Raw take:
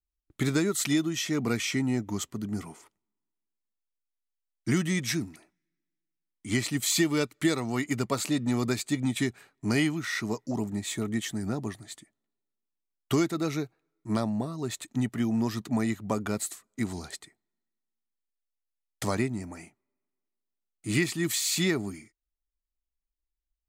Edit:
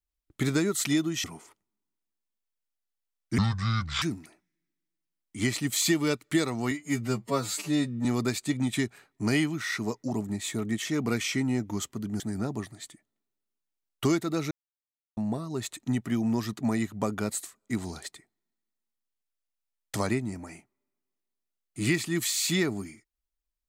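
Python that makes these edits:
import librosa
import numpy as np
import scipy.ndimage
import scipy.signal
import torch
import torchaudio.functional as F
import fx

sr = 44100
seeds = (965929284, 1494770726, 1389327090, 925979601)

y = fx.edit(x, sr, fx.move(start_s=1.24, length_s=1.35, to_s=11.28),
    fx.speed_span(start_s=4.73, length_s=0.39, speed=0.61),
    fx.stretch_span(start_s=7.81, length_s=0.67, factor=2.0),
    fx.silence(start_s=13.59, length_s=0.66), tone=tone)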